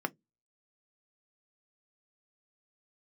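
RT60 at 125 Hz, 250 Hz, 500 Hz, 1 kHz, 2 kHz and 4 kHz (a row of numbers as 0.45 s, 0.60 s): 0.25 s, 0.25 s, 0.20 s, 0.10 s, 0.10 s, 0.10 s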